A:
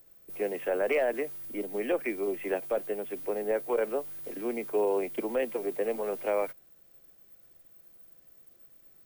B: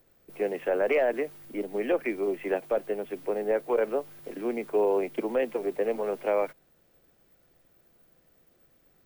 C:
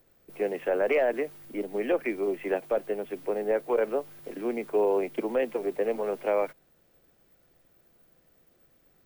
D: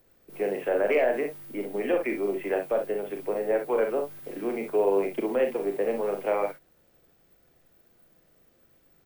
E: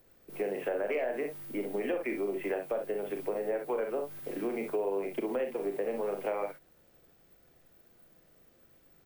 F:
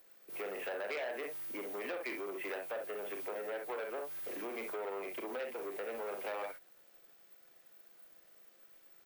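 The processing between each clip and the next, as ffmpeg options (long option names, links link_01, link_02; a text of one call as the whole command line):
ffmpeg -i in.wav -af "aemphasis=mode=reproduction:type=cd,volume=2.5dB" out.wav
ffmpeg -i in.wav -af anull out.wav
ffmpeg -i in.wav -af "aecho=1:1:40|61:0.473|0.376" out.wav
ffmpeg -i in.wav -af "acompressor=threshold=-30dB:ratio=4" out.wav
ffmpeg -i in.wav -af "asoftclip=type=tanh:threshold=-31.5dB,highpass=frequency=1000:poles=1,volume=2.5dB" out.wav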